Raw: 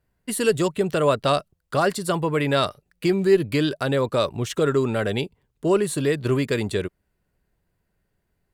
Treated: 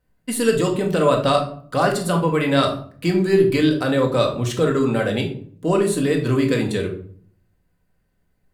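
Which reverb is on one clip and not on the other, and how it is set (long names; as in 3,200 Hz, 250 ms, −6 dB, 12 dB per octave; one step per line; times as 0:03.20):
rectangular room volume 600 cubic metres, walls furnished, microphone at 2 metres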